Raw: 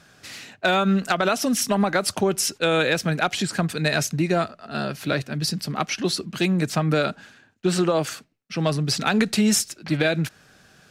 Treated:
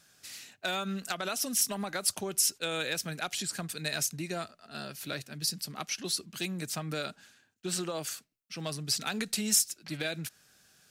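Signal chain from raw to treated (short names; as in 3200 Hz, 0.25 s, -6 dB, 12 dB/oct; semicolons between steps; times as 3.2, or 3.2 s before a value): pre-emphasis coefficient 0.8; gain -1.5 dB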